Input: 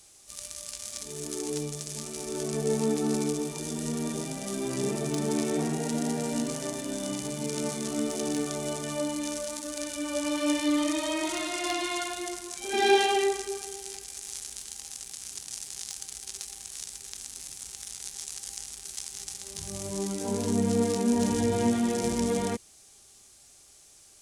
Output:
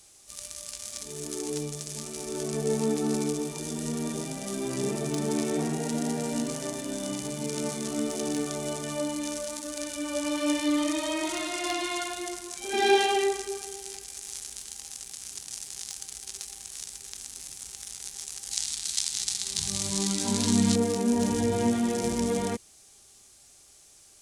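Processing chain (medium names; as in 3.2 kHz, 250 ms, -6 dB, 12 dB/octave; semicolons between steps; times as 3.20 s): 18.51–20.76 s: graphic EQ 125/250/500/1000/2000/4000/8000 Hz +3/+5/-9/+4/+4/+12/+6 dB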